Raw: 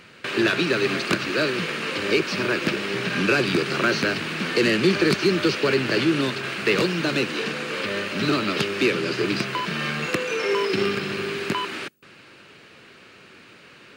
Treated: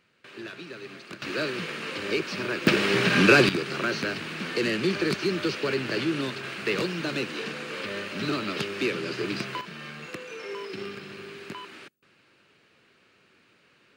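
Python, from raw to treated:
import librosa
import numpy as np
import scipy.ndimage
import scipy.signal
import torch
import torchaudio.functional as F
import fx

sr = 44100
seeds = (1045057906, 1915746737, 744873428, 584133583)

y = fx.gain(x, sr, db=fx.steps((0.0, -19.0), (1.22, -6.5), (2.67, 3.5), (3.49, -6.5), (9.61, -13.5)))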